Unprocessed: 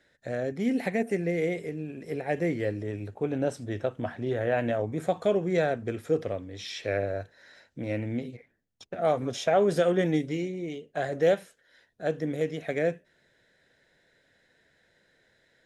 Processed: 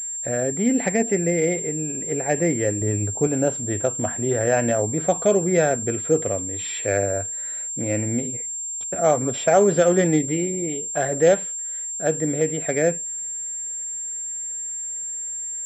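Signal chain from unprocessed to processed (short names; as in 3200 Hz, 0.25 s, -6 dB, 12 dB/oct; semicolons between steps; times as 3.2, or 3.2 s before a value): 2.81–3.27 low shelf 230 Hz +7.5 dB; pulse-width modulation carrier 7400 Hz; gain +6.5 dB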